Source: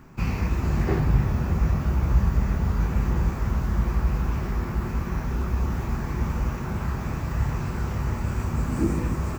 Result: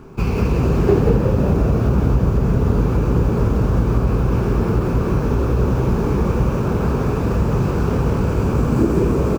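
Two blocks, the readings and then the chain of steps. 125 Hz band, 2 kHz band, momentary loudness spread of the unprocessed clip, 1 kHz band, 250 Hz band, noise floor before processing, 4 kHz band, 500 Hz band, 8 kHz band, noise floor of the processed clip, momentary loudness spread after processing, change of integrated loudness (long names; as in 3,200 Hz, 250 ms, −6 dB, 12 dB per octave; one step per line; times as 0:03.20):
+7.5 dB, +4.0 dB, 6 LU, +7.5 dB, +10.5 dB, −31 dBFS, +6.0 dB, +15.5 dB, can't be measured, −20 dBFS, 3 LU, +8.0 dB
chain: running median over 5 samples
parametric band 1,900 Hz −13 dB 0.25 octaves
downward compressor, threshold −21 dBFS, peak gain reduction 8 dB
parametric band 420 Hz +12.5 dB 0.42 octaves
echo with shifted repeats 181 ms, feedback 51%, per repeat +61 Hz, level −4 dB
level +7 dB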